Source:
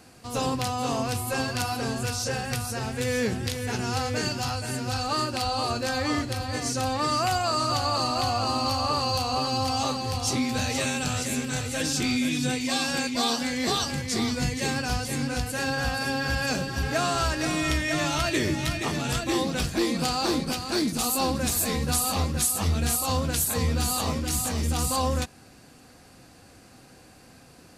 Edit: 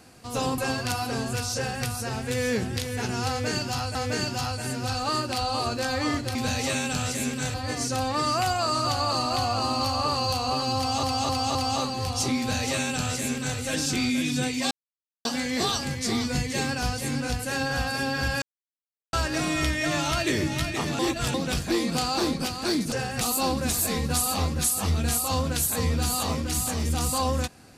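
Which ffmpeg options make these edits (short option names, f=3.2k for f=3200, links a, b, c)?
-filter_complex "[0:a]asplit=16[a][b][c][d][e][f][g][h][i][j][k][l][m][n][o][p];[a]atrim=end=0.582[q];[b]atrim=start=1.278:end=4.652[r];[c]atrim=start=3.988:end=6.392[s];[d]atrim=start=10.458:end=11.652[t];[e]atrim=start=6.388:end=9.882[u];[f]atrim=start=9.618:end=9.882[v];[g]atrim=start=9.618:end=9.882[w];[h]atrim=start=9.618:end=12.78,asetpts=PTS-STARTPTS,afade=t=out:st=3.158:d=0.004:c=hsin[x];[i]atrim=start=12.78:end=13.32,asetpts=PTS-STARTPTS,volume=0[y];[j]atrim=start=13.32:end=16.49,asetpts=PTS-STARTPTS,afade=t=in:d=0.004:c=hsin,afade=t=out:st=3.166:d=0.004:c=hsin[z];[k]atrim=start=16.49:end=17.2,asetpts=PTS-STARTPTS,volume=0[aa];[l]atrim=start=17.2:end=19.062,asetpts=PTS-STARTPTS,afade=t=in:d=0.004:c=hsin[ab];[m]atrim=start=19.058:end=19.412,asetpts=PTS-STARTPTS,areverse[ac];[n]atrim=start=19.408:end=20.992[ad];[o]atrim=start=2.258:end=2.552[ae];[p]atrim=start=20.988[af];[q][r]acrossfade=d=0.004:c1=hsin:c2=hsin[ag];[ag][s]acrossfade=d=0.004:c1=hsin:c2=hsin[ah];[ah][t]acrossfade=d=0.004:c1=hsin:c2=hsin[ai];[ai][u]acrossfade=d=0.004:c1=hsin:c2=hsin[aj];[aj][v]acrossfade=d=0.004:c1=hsin:c2=hsin[ak];[ak][w]acrossfade=d=0.004:c1=hsin:c2=hsin[al];[x][y][z][aa][ab]concat=n=5:v=0:a=1[am];[al][am]acrossfade=d=0.004:c1=hsin:c2=hsin[an];[an][ac]acrossfade=d=0.004:c1=hsin:c2=hsin[ao];[ao][ad]acrossfade=d=0.004:c1=hsin:c2=hsin[ap];[ap][ae]acrossfade=d=0.004:c1=hsin:c2=hsin[aq];[aq][af]acrossfade=d=0.004:c1=hsin:c2=hsin"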